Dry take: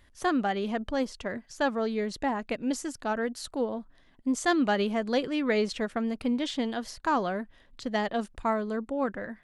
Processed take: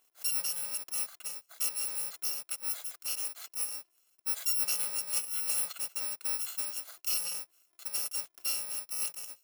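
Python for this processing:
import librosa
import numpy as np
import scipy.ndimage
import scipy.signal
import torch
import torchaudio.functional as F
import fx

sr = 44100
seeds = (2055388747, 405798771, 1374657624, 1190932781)

y = fx.bit_reversed(x, sr, seeds[0], block=128)
y = scipy.signal.sosfilt(scipy.signal.butter(2, 560.0, 'highpass', fs=sr, output='sos'), y)
y = y * 10.0 ** (-5.5 / 20.0)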